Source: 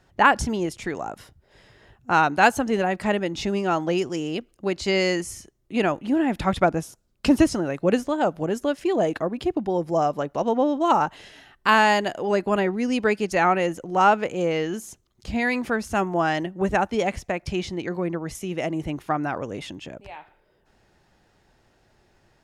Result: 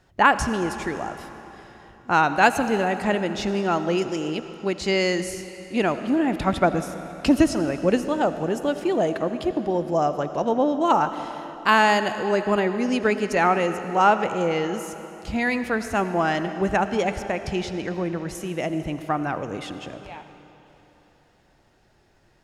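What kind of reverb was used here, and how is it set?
digital reverb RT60 3.5 s, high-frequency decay 0.9×, pre-delay 40 ms, DRR 10 dB

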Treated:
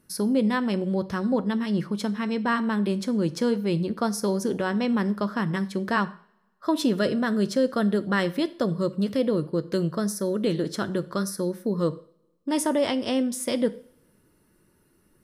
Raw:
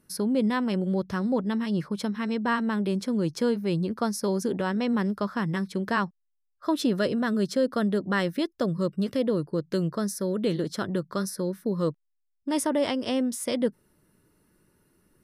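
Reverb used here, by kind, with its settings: two-slope reverb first 0.49 s, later 1.6 s, from -24 dB, DRR 12 dB; gain +1.5 dB

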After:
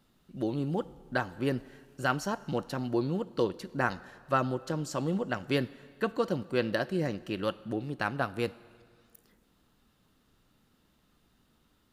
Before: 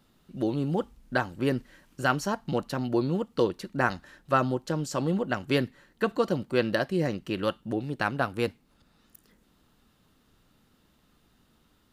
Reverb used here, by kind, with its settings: plate-style reverb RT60 1.9 s, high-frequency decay 0.9×, DRR 18 dB; gain -3.5 dB

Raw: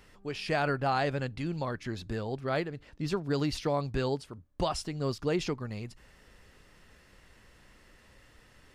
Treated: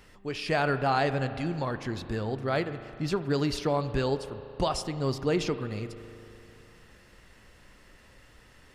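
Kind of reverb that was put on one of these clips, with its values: spring tank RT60 2.9 s, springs 37 ms, chirp 40 ms, DRR 11 dB; gain +2.5 dB

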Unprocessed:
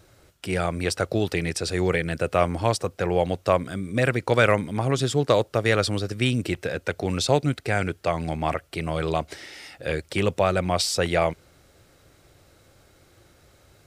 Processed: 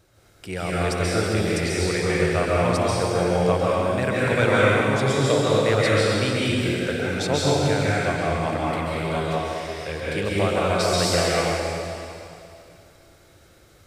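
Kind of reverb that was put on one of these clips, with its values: plate-style reverb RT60 2.6 s, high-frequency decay 1×, pre-delay 0.12 s, DRR -7 dB; gain -5 dB

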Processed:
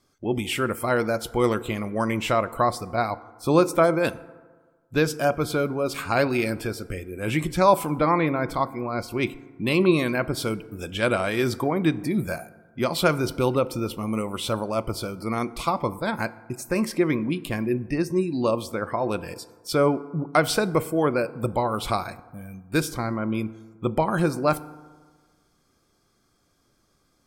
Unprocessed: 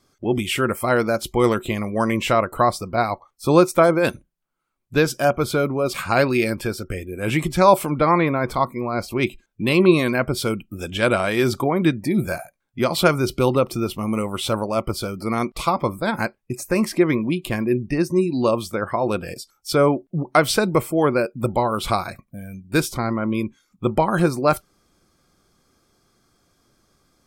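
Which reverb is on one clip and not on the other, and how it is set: FDN reverb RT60 1.5 s, low-frequency decay 0.95×, high-frequency decay 0.4×, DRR 15.5 dB; gain -4 dB

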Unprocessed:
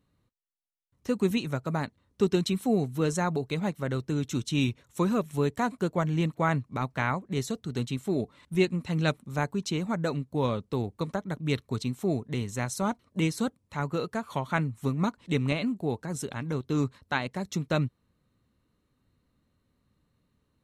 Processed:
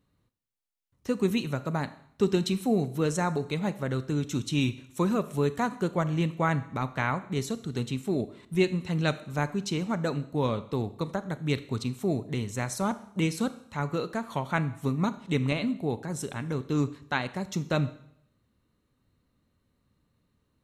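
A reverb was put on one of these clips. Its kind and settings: Schroeder reverb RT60 0.68 s, combs from 27 ms, DRR 13.5 dB

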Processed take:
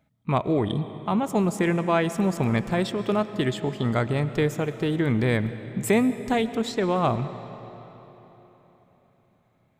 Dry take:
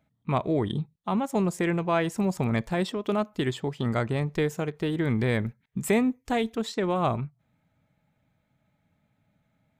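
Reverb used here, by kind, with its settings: digital reverb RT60 3.9 s, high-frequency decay 0.8×, pre-delay 75 ms, DRR 12 dB; gain +2.5 dB

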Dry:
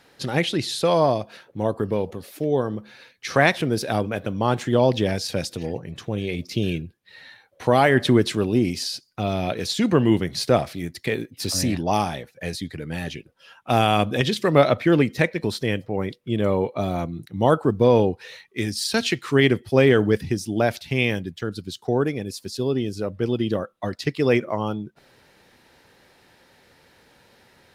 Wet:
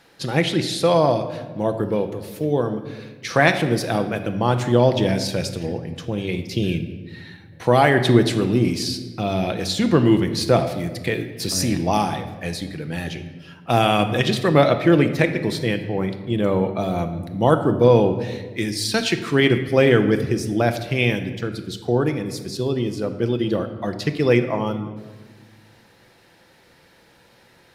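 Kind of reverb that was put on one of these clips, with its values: shoebox room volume 1200 m³, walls mixed, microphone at 0.73 m; gain +1 dB

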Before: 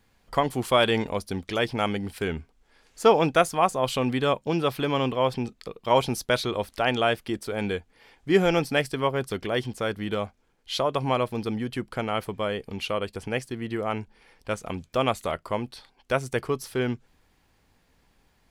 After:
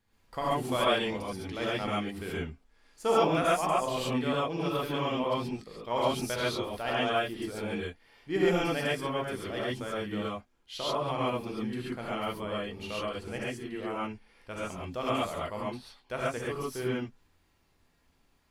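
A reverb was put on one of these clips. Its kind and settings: non-linear reverb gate 0.16 s rising, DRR -7 dB; gain -12.5 dB

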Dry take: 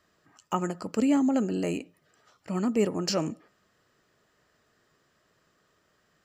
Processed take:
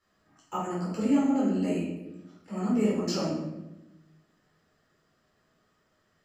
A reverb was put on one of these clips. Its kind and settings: shoebox room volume 370 m³, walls mixed, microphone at 4.2 m; gain -13 dB

